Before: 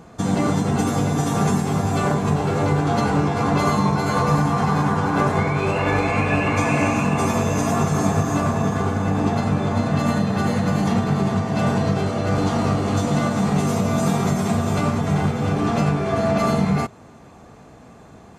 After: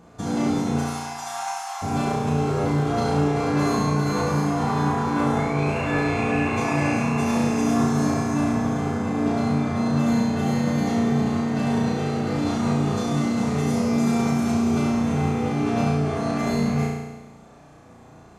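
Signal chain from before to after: 0.78–1.82 steep high-pass 680 Hz 72 dB/oct; flutter echo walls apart 5.9 m, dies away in 1.1 s; gain -7.5 dB

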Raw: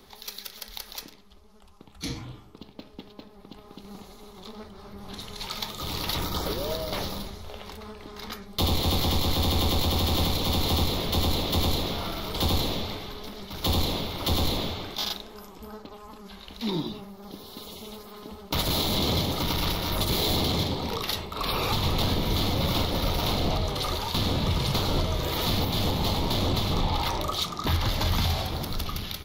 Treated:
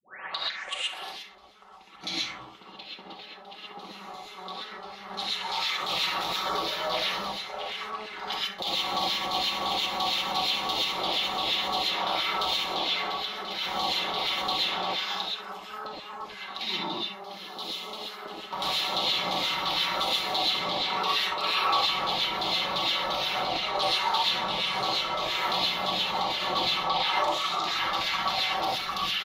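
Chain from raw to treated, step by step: tape start at the beginning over 1.14 s; high shelf 7200 Hz +4.5 dB; comb 5.3 ms, depth 62%; limiter -22 dBFS, peak gain reduction 10 dB; LFO band-pass saw down 2.9 Hz 670–3800 Hz; flutter echo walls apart 11.2 m, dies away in 0.26 s; non-linear reverb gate 0.15 s rising, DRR -5.5 dB; gain +7.5 dB

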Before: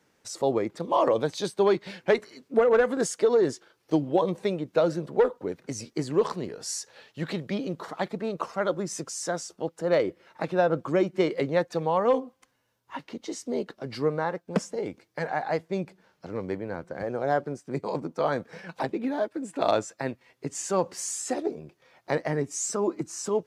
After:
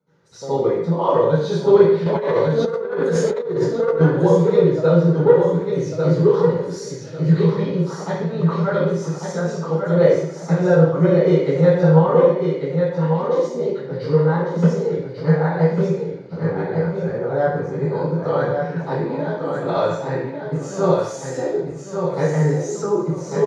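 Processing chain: resonant low shelf 120 Hz -7 dB, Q 3; feedback echo 1.146 s, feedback 24%, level -5 dB; reverb RT60 0.70 s, pre-delay 64 ms, DRR -17.5 dB; 2.06–4.01 negative-ratio compressor -4 dBFS, ratio -1; gain -16 dB

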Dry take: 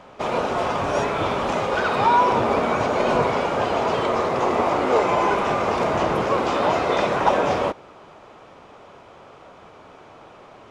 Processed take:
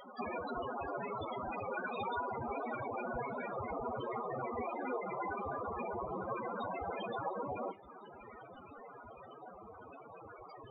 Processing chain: spectral contrast lowered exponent 0.12; compressor 12:1, threshold -31 dBFS, peak gain reduction 18.5 dB; loudest bins only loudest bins 4; thin delay 0.703 s, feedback 72%, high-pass 3100 Hz, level -20 dB; on a send at -8.5 dB: reverb RT60 0.25 s, pre-delay 3 ms; on the sum: gain +13.5 dB

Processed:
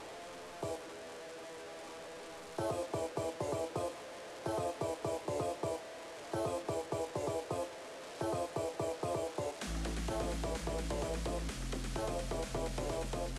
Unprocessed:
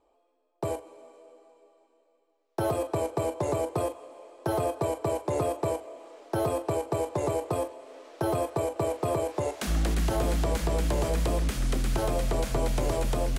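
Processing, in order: delta modulation 64 kbps, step -33 dBFS; LPF 10000 Hz 12 dB/oct; low shelf 62 Hz -10 dB; gain -8.5 dB

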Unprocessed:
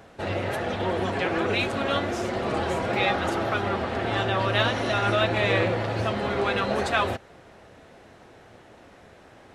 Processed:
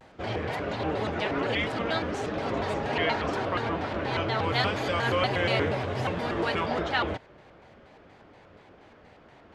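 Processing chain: LPF 6300 Hz 12 dB/oct, from 4.44 s 11000 Hz, from 6.65 s 4300 Hz; shaped vibrato square 4.2 Hz, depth 250 cents; gain -3 dB

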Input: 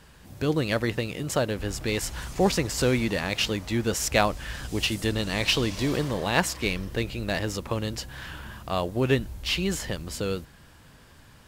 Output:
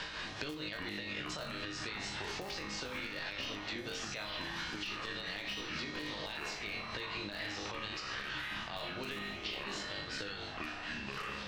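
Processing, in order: LPF 5000 Hz 24 dB/oct; low shelf 200 Hz -5.5 dB; notches 50/100/150/200/250 Hz; flutter echo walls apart 3.4 m, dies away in 0.42 s; in parallel at -4.5 dB: Schmitt trigger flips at -16.5 dBFS; on the sum: tilt shelf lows -6 dB, about 1100 Hz; resonator 310 Hz, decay 0.52 s, harmonics all, mix 80%; compressor 5:1, threshold -47 dBFS, peak gain reduction 19.5 dB; tremolo 4.3 Hz, depth 54%; echoes that change speed 0.166 s, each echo -7 st, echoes 3, each echo -6 dB; limiter -41 dBFS, peak gain reduction 9 dB; three-band squash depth 100%; gain +11 dB

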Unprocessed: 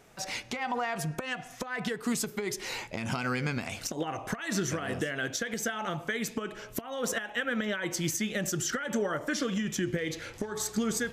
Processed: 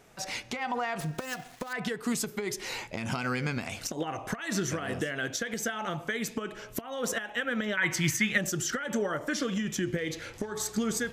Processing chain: 1–1.73 switching dead time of 0.12 ms; 7.77–8.38 ten-band EQ 125 Hz +8 dB, 500 Hz -7 dB, 1000 Hz +5 dB, 2000 Hz +11 dB

